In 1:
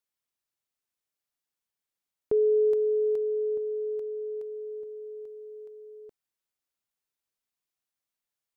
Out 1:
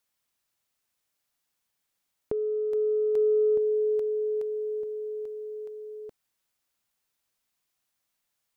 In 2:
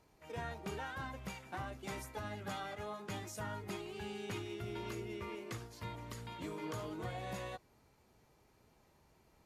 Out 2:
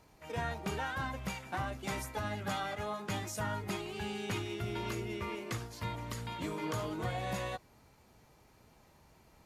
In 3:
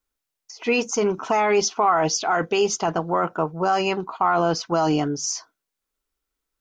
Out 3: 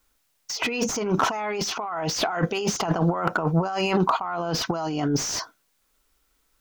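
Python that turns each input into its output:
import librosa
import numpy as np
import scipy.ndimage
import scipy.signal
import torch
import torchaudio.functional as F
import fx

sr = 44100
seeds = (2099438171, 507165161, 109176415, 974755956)

y = fx.peak_eq(x, sr, hz=390.0, db=-3.5, octaves=0.57)
y = fx.over_compress(y, sr, threshold_db=-31.0, ratio=-1.0)
y = fx.slew_limit(y, sr, full_power_hz=110.0)
y = y * 10.0 ** (6.5 / 20.0)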